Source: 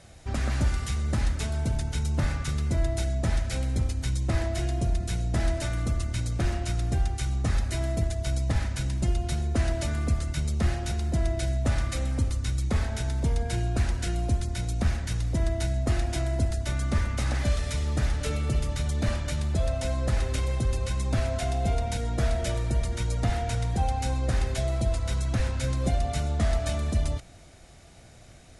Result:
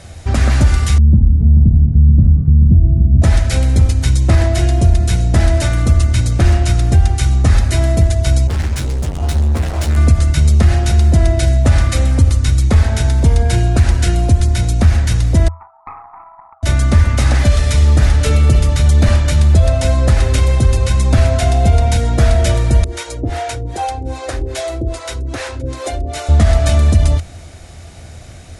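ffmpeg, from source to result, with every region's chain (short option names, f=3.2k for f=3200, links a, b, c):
-filter_complex "[0:a]asettb=1/sr,asplit=3[a][b][c];[a]atrim=end=0.984[d];[b]atrim=start=0.98:end=3.22,asetpts=PTS-STARTPTS,afade=t=in:d=0.004:c=qsin,afade=t=out:st=2.236:d=0.004:c=qsin,lowpass=f=200:t=q:w=2,aecho=1:1:431:0.422,atrim=end_sample=98784[e];[c]atrim=start=3.216[f];[d][e]acrossfade=d=0.004:c1=hsin:c2=qsin[g];[g][f]acrossfade=d=0.004:c1=qsin:c2=hsin,asettb=1/sr,asplit=3[h][i][j];[h]atrim=end=8.474[k];[i]atrim=start=8.47:end=9.97,asetpts=PTS-STARTPTS,afade=t=in:d=0.004:c=qsin,afade=t=out:st=1.496:d=0.004:c=qsin,volume=33.5dB,asoftclip=hard,volume=-33.5dB,asplit=2[l][m];[m]adelay=13,volume=-4dB[n];[l][n]amix=inputs=2:normalize=0,atrim=end_sample=66150[o];[j]atrim=start=9.966[p];[k][o]acrossfade=d=0.004:c1=hsin:c2=qsin[q];[q][p]acrossfade=d=0.004:c1=qsin:c2=hsin,asettb=1/sr,asplit=3[r][s][t];[r]atrim=end=15.484[u];[s]atrim=start=15.48:end=16.63,asetpts=PTS-STARTPTS,afade=t=in:d=0.004:c=qsin,afade=t=out:st=1.146:d=0.004:c=qsin,asuperpass=centerf=1000:order=12:qfactor=2,acontrast=28,aeval=exprs='(tanh(22.4*val(0)+0.8)-tanh(0.8))/22.4':c=same[v];[t]atrim=start=16.626[w];[u][v]acrossfade=d=0.004:c1=hsin:c2=qsin[x];[x][w]acrossfade=d=0.004:c1=qsin:c2=hsin,asettb=1/sr,asplit=3[y][z][aa];[y]atrim=end=22.844[ab];[z]atrim=start=22.84:end=26.29,asetpts=PTS-STARTPTS,afade=t=in:d=0.004:c=qsin,afade=t=out:st=3.446:d=0.004:c=qsin,lowshelf=f=250:t=q:w=3:g=-8,acrossover=split=480[ac][ad];[ac]aeval=exprs='val(0)*(1-1/2+1/2*cos(2*PI*2.5*n/s))':c=same[ae];[ad]aeval=exprs='val(0)*(1-1/2-1/2*cos(2*PI*2.5*n/s))':c=same[af];[ae][af]amix=inputs=2:normalize=0[ag];[aa]atrim=start=26.286[ah];[ab][ag]acrossfade=d=0.004:c1=hsin:c2=qsin[ai];[ai][ah]acrossfade=d=0.004:c1=qsin:c2=hsin,equalizer=f=82:w=4.7:g=12,alimiter=level_in=14dB:limit=-1dB:release=50:level=0:latency=1,volume=-1dB"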